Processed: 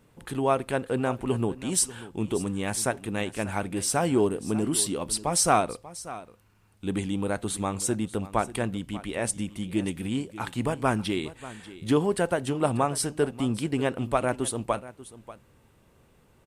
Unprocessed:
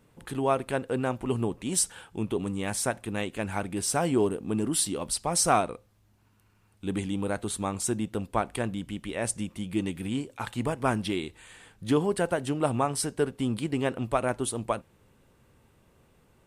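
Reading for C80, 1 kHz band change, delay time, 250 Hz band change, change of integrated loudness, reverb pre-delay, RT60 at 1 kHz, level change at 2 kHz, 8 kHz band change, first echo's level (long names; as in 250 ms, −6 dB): no reverb audible, +1.5 dB, 589 ms, +1.5 dB, +1.5 dB, no reverb audible, no reverb audible, +1.5 dB, +1.5 dB, −16.5 dB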